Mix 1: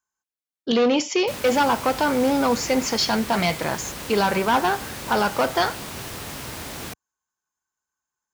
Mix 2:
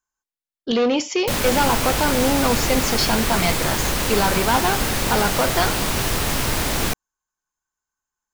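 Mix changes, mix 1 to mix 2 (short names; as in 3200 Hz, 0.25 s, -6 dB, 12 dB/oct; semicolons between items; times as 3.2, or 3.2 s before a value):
background +11.5 dB; master: remove HPF 70 Hz 12 dB/oct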